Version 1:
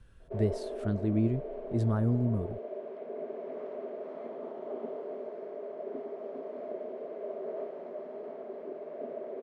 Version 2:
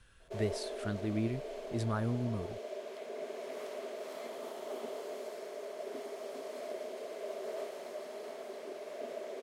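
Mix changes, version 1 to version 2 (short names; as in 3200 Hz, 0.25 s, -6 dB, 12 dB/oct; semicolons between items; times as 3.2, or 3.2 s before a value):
background: remove LPF 1900 Hz 12 dB/oct; master: add tilt shelf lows -7.5 dB, about 820 Hz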